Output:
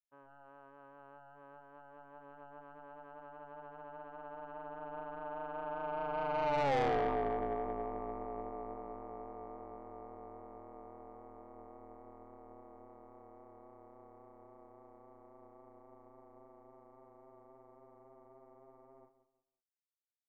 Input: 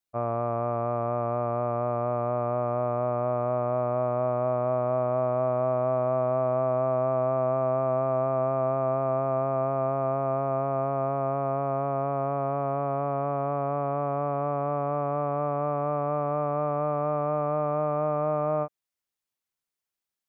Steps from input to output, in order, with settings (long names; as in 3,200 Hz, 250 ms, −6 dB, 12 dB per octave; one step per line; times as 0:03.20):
source passing by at 0:06.75, 53 m/s, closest 8.6 metres
high-shelf EQ 2,300 Hz +8 dB
repeating echo 174 ms, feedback 29%, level −13 dB
soft clipping −30 dBFS, distortion −7 dB
ring modulation 140 Hz
level +5 dB